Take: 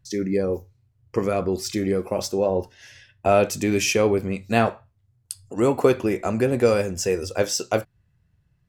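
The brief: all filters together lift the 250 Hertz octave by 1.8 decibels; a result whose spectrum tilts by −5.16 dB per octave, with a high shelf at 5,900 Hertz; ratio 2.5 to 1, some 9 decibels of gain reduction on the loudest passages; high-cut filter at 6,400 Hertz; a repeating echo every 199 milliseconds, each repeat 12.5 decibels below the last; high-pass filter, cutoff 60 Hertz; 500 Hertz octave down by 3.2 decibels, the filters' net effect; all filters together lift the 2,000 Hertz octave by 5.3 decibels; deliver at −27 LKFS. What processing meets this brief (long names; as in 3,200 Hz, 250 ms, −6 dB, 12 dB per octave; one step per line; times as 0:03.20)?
high-pass filter 60 Hz
low-pass filter 6,400 Hz
parametric band 250 Hz +4 dB
parametric band 500 Hz −5.5 dB
parametric band 2,000 Hz +8.5 dB
high-shelf EQ 5,900 Hz −7.5 dB
downward compressor 2.5 to 1, threshold −27 dBFS
repeating echo 199 ms, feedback 24%, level −12.5 dB
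level +2.5 dB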